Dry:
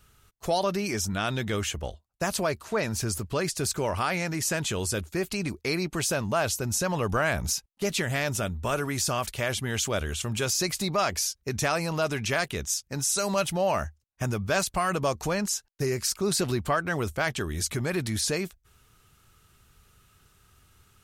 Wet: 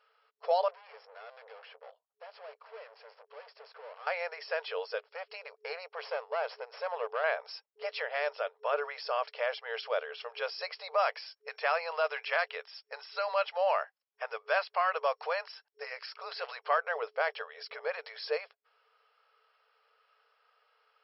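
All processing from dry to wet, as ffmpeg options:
ffmpeg -i in.wav -filter_complex "[0:a]asettb=1/sr,asplit=3[link_01][link_02][link_03];[link_01]atrim=end=0.684[link_04];[link_02]atrim=start=0.68:end=4.07,asetpts=PTS-STARTPTS,afade=type=in:duration=0.004:curve=qsin,afade=type=out:start_time=3.386:duration=0.004:curve=qsin,highshelf=frequency=5200:gain=-11.5,aeval=exprs='(tanh(126*val(0)+0.65)-tanh(0.65))/126':channel_layout=same[link_05];[link_03]atrim=start=4.066[link_06];[link_04][link_05]acrossfade=duration=0.004:curve1=hsin:curve2=qsin[link_07];[link_07][link_06]acrossfade=duration=0.004:curve1=qsin:curve2=hsin,asettb=1/sr,asplit=3[link_08][link_09][link_10];[link_08]atrim=end=5.114[link_11];[link_09]atrim=start=5.11:end=7.24,asetpts=PTS-STARTPTS,afade=type=in:duration=0.004:curve=qsin,afade=type=out:start_time=2.126:duration=0.004:curve=qsin,acompressor=mode=upward:threshold=-39dB:ratio=2.5:attack=3.2:release=140:knee=2.83:detection=peak,aeval=exprs='(tanh(14.1*val(0)+0.75)-tanh(0.75))/14.1':channel_layout=same[link_12];[link_10]atrim=start=7.236[link_13];[link_11][link_12]acrossfade=duration=0.004:curve1=hsin:curve2=qsin[link_14];[link_14][link_13]acrossfade=duration=0.004:curve1=qsin:curve2=hsin,asettb=1/sr,asplit=3[link_15][link_16][link_17];[link_15]atrim=end=11.054[link_18];[link_16]atrim=start=11.05:end=16.78,asetpts=PTS-STARTPTS,afade=type=in:duration=0.004:curve=qsin,afade=type=out:start_time=5.726:duration=0.004:curve=qsin,acrossover=split=4100[link_19][link_20];[link_20]acompressor=threshold=-38dB:ratio=4:attack=1:release=60[link_21];[link_19][link_21]amix=inputs=2:normalize=0,highpass=450,tiltshelf=frequency=740:gain=-4[link_22];[link_17]atrim=start=16.776[link_23];[link_18][link_22]acrossfade=duration=0.004:curve1=hsin:curve2=qsin[link_24];[link_24][link_23]acrossfade=duration=0.004:curve1=qsin:curve2=hsin,bandreject=frequency=3700:width=9.8,afftfilt=real='re*between(b*sr/4096,430,5500)':imag='im*between(b*sr/4096,430,5500)':win_size=4096:overlap=0.75,highshelf=frequency=2100:gain=-11" out.wav

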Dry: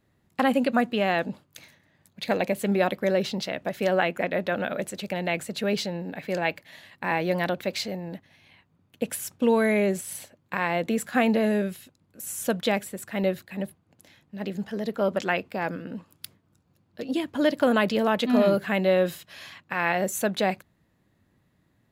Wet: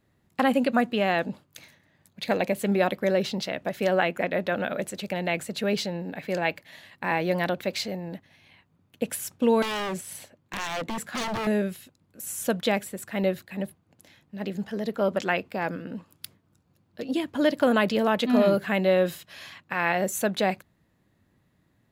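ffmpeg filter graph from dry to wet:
ffmpeg -i in.wav -filter_complex "[0:a]asettb=1/sr,asplit=3[link_01][link_02][link_03];[link_01]atrim=end=9.624[link_04];[link_02]atrim=start=9.62:end=11.47,asetpts=PTS-STARTPTS,afade=type=in:duration=0.004:curve=qsin,afade=type=out:start_time=1.846:duration=0.004:curve=qsin,highshelf=frequency=5800:gain=-4.5,aeval=exprs='0.0596*(abs(mod(val(0)/0.0596+3,4)-2)-1)':channel_layout=same[link_05];[link_03]atrim=start=11.466[link_06];[link_04][link_05]acrossfade=duration=0.004:curve1=hsin:curve2=qsin[link_07];[link_07][link_06]acrossfade=duration=0.004:curve1=qsin:curve2=hsin" out.wav

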